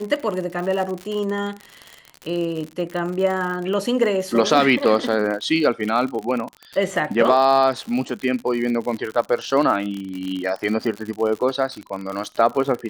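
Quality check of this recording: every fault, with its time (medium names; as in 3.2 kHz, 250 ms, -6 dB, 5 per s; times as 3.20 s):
crackle 70 per s -26 dBFS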